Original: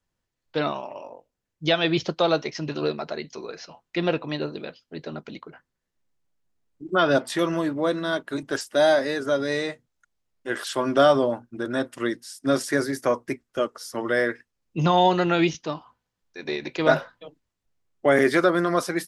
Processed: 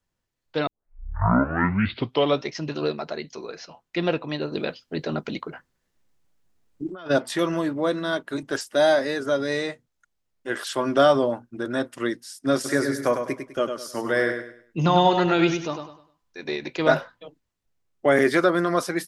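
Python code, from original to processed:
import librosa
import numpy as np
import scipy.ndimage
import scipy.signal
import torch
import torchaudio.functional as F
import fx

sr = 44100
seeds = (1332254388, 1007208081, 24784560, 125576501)

y = fx.over_compress(x, sr, threshold_db=-33.0, ratio=-1.0, at=(4.51, 7.09), fade=0.02)
y = fx.echo_feedback(y, sr, ms=101, feedback_pct=31, wet_db=-7.0, at=(12.64, 16.42), fade=0.02)
y = fx.edit(y, sr, fx.tape_start(start_s=0.67, length_s=1.85), tone=tone)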